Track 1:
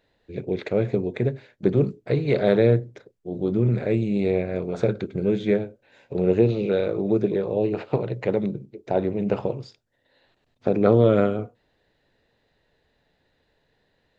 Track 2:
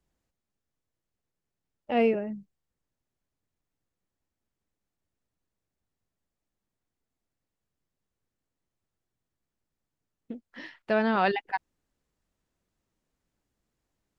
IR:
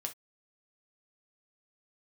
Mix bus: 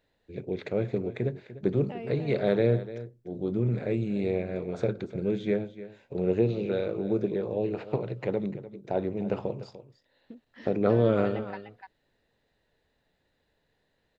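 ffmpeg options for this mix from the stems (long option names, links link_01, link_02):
-filter_complex "[0:a]volume=-6dB,asplit=2[link_01][link_02];[link_02]volume=-15dB[link_03];[1:a]acompressor=threshold=-32dB:ratio=4,volume=-7dB,asplit=2[link_04][link_05];[link_05]volume=-6dB[link_06];[link_03][link_06]amix=inputs=2:normalize=0,aecho=0:1:297:1[link_07];[link_01][link_04][link_07]amix=inputs=3:normalize=0"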